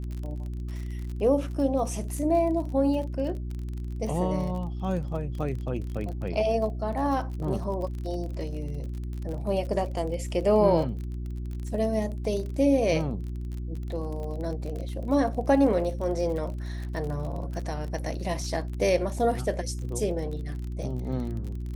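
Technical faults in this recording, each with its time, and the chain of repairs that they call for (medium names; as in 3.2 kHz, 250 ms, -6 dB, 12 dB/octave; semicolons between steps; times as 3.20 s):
crackle 34 per s -34 dBFS
hum 60 Hz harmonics 6 -33 dBFS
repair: de-click; de-hum 60 Hz, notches 6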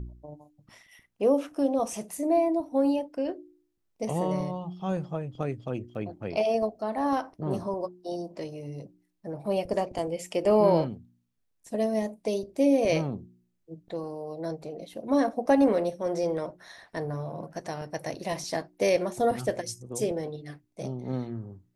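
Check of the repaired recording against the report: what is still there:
nothing left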